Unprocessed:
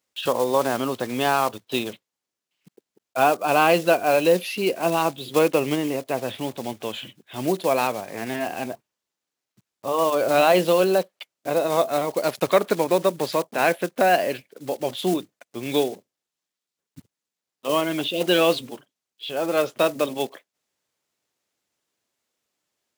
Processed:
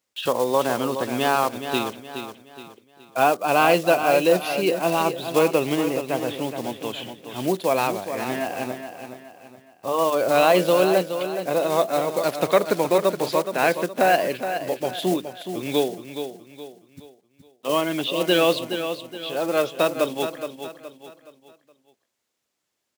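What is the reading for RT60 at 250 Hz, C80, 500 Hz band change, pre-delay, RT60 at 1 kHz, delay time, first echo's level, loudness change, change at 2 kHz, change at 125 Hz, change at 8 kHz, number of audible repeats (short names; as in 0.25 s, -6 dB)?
none, none, +0.5 dB, none, none, 0.42 s, -9.0 dB, 0.0 dB, +0.5 dB, +0.5 dB, +0.5 dB, 4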